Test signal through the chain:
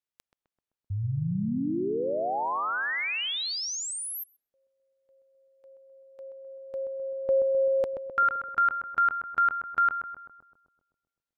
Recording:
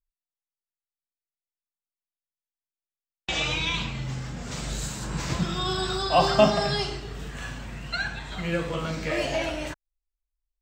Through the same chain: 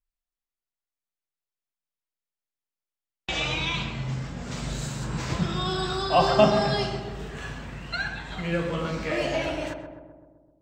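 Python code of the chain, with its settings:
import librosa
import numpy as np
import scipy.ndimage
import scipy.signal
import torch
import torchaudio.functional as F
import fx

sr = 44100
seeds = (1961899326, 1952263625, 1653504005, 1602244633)

y = fx.high_shelf(x, sr, hz=6300.0, db=-7.0)
y = fx.echo_filtered(y, sr, ms=129, feedback_pct=65, hz=1300.0, wet_db=-6.5)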